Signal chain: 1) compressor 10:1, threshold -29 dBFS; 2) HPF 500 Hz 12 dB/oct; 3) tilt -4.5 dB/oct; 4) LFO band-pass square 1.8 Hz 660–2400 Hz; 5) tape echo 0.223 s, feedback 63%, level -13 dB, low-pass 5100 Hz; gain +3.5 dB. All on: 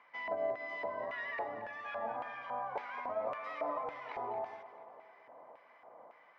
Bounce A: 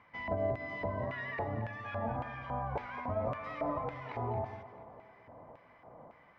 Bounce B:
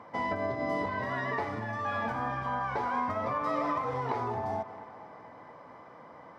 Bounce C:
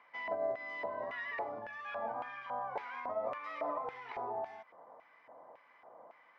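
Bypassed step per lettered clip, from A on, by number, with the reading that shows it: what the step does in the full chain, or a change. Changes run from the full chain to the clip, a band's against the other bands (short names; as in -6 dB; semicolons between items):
2, 125 Hz band +24.5 dB; 4, 125 Hz band +17.0 dB; 5, echo-to-direct -33.5 dB to none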